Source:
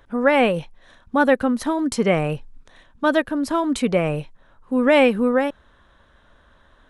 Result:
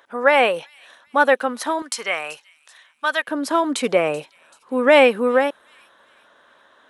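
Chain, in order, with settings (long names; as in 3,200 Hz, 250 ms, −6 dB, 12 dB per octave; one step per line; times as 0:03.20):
high-pass filter 560 Hz 12 dB per octave, from 0:01.82 1,200 Hz, from 0:03.27 390 Hz
delay with a high-pass on its return 383 ms, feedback 40%, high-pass 4,500 Hz, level −16.5 dB
level +4 dB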